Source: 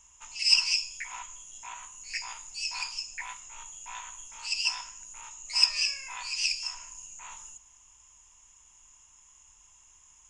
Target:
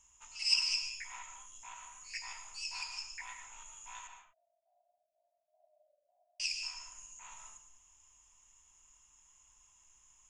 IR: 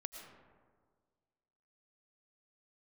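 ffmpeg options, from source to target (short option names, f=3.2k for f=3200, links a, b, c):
-filter_complex "[0:a]asettb=1/sr,asplit=3[a][b][c];[a]atrim=end=4.074[d];[b]atrim=start=4.07:end=6.4,asetpts=PTS-STARTPTS,afade=t=in:d=0.004:c=qsin,afade=t=out:st=2.326:d=0.004:c=qsin,asuperpass=centerf=640:order=8:qfactor=5[e];[c]atrim=start=6.396[f];[d][e]acrossfade=d=0.004:c1=hsin:c2=qsin[g];[g][f]acrossfade=d=0.004:c1=qsin:c2=hsin[h];[1:a]atrim=start_sample=2205,afade=t=out:st=0.31:d=0.01,atrim=end_sample=14112[i];[h][i]afir=irnorm=-1:irlink=0,volume=-3.5dB"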